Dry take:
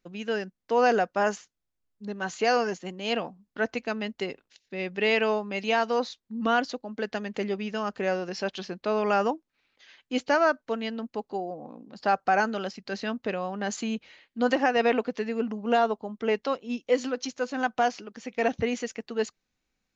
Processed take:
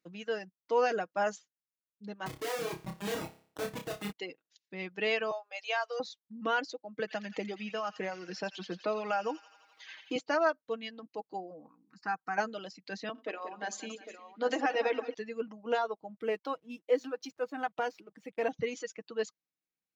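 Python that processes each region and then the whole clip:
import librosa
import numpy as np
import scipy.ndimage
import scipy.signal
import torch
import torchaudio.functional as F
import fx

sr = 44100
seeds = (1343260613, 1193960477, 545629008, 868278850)

y = fx.chain(x, sr, fx.highpass(hz=200.0, slope=24),
    fx.schmitt(flips_db=-31.5),
    fx.room_flutter(wall_m=5.1, rt60_s=0.51), at=(2.26, 4.12))
y = fx.chain(y, sr, fx.steep_highpass(hz=530.0, slope=36),
    fx.notch(hz=950.0, q=15.0), at=(5.31, 6.0))
y = fx.chain(y, sr, fx.echo_wet_highpass(ms=85, feedback_pct=60, hz=1800.0, wet_db=-4.0),
    fx.band_squash(depth_pct=70), at=(6.99, 10.16))
y = fx.chain(y, sr, fx.low_shelf(hz=190.0, db=-4.0),
    fx.fixed_phaser(hz=1400.0, stages=4), at=(11.68, 12.38))
y = fx.chain(y, sr, fx.steep_highpass(hz=230.0, slope=48),
    fx.hum_notches(base_hz=60, count=9),
    fx.echo_multitap(ms=(57, 88, 181, 361, 804), db=(-13.5, -13.0, -8.5, -13.5, -9.5)), at=(13.09, 15.14))
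y = fx.chain(y, sr, fx.high_shelf(hz=5000.0, db=-11.5),
    fx.backlash(play_db=-50.0), at=(16.1, 18.52))
y = scipy.signal.sosfilt(scipy.signal.butter(2, 130.0, 'highpass', fs=sr, output='sos'), y)
y = fx.dereverb_blind(y, sr, rt60_s=1.3)
y = y + 0.52 * np.pad(y, (int(6.3 * sr / 1000.0), 0))[:len(y)]
y = y * 10.0 ** (-6.5 / 20.0)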